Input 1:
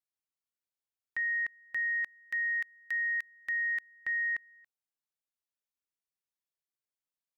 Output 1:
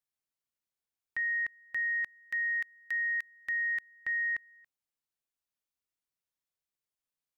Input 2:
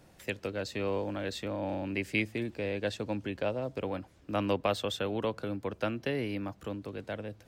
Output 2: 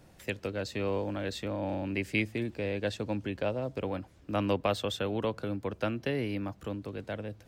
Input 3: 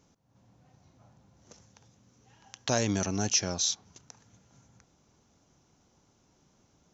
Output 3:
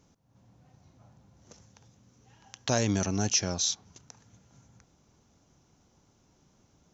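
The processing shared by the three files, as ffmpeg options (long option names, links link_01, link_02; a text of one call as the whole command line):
ffmpeg -i in.wav -af "lowshelf=frequency=170:gain=4" out.wav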